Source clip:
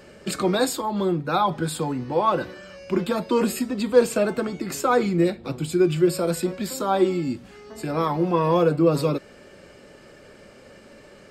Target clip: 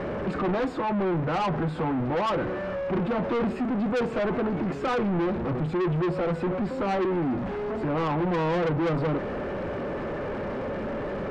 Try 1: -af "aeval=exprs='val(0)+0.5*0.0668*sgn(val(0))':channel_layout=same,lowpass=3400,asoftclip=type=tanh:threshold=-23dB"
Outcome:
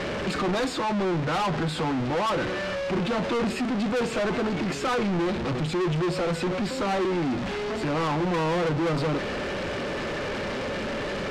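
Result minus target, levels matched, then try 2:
4,000 Hz band +9.0 dB
-af "aeval=exprs='val(0)+0.5*0.0668*sgn(val(0))':channel_layout=same,lowpass=1200,asoftclip=type=tanh:threshold=-23dB"

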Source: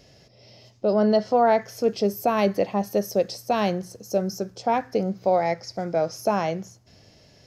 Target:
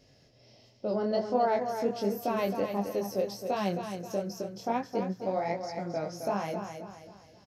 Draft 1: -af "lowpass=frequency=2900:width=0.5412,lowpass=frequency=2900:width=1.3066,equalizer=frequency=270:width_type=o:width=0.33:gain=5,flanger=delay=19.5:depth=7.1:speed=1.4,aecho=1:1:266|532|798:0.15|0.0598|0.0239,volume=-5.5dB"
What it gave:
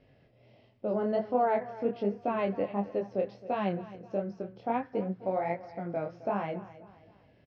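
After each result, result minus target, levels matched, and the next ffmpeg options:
4,000 Hz band −9.5 dB; echo-to-direct −9 dB
-af "equalizer=frequency=270:width_type=o:width=0.33:gain=5,flanger=delay=19.5:depth=7.1:speed=1.4,aecho=1:1:266|532|798:0.15|0.0598|0.0239,volume=-5.5dB"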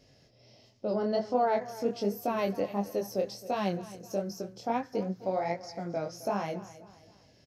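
echo-to-direct −9 dB
-af "equalizer=frequency=270:width_type=o:width=0.33:gain=5,flanger=delay=19.5:depth=7.1:speed=1.4,aecho=1:1:266|532|798|1064|1330:0.422|0.169|0.0675|0.027|0.0108,volume=-5.5dB"

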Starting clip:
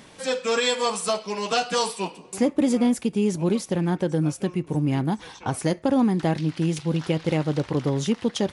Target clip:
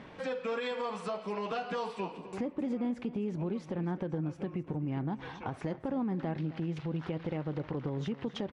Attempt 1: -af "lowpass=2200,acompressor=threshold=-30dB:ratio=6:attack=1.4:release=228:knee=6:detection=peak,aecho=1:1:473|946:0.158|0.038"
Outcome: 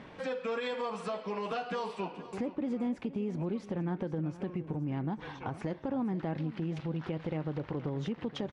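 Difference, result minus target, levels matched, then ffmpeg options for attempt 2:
echo 211 ms late
-af "lowpass=2200,acompressor=threshold=-30dB:ratio=6:attack=1.4:release=228:knee=6:detection=peak,aecho=1:1:262|524:0.158|0.038"

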